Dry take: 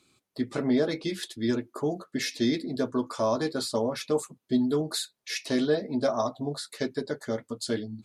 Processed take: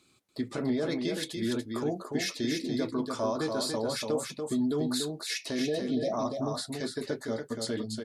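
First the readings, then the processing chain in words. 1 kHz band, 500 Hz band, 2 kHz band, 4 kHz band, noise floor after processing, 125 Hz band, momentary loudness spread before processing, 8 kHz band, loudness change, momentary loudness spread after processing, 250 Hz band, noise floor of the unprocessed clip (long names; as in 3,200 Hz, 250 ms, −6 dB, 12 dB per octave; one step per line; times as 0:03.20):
−2.5 dB, −3.5 dB, −2.0 dB, −0.5 dB, −57 dBFS, −1.5 dB, 8 LU, 0.0 dB, −2.5 dB, 5 LU, −2.5 dB, −79 dBFS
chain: time-frequency box erased 0:05.62–0:06.12, 790–1,700 Hz
brickwall limiter −22.5 dBFS, peak gain reduction 8.5 dB
single-tap delay 288 ms −5 dB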